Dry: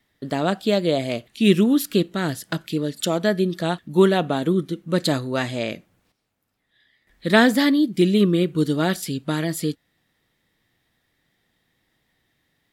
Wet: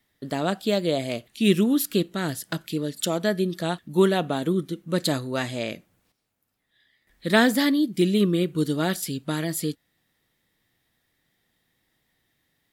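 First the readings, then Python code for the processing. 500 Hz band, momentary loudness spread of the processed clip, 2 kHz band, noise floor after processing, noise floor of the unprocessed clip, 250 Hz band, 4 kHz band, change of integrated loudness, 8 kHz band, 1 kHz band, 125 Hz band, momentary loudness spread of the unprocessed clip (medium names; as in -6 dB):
-3.5 dB, 11 LU, -3.0 dB, -73 dBFS, -71 dBFS, -3.5 dB, -2.0 dB, -3.0 dB, +1.0 dB, -3.5 dB, -3.5 dB, 11 LU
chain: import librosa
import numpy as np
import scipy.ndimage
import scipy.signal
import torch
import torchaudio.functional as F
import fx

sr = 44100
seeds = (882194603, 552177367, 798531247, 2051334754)

y = fx.high_shelf(x, sr, hz=7500.0, db=7.5)
y = F.gain(torch.from_numpy(y), -3.5).numpy()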